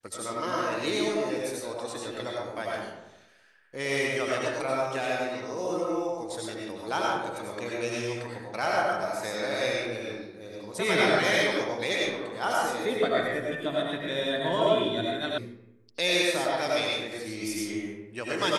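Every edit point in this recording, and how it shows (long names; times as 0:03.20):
0:15.38: cut off before it has died away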